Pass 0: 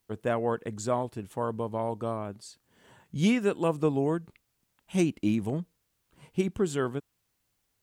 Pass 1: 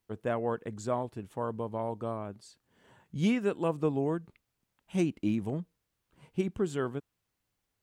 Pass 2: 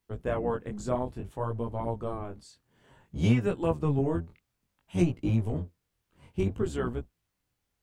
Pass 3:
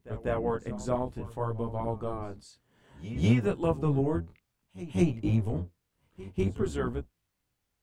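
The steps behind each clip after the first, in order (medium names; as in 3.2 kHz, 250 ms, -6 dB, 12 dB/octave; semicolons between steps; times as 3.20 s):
treble shelf 4 kHz -6 dB; trim -3 dB
octave divider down 1 oct, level 0 dB; chorus 0.58 Hz, delay 16.5 ms, depth 7.9 ms; trim +3.5 dB
pre-echo 196 ms -16 dB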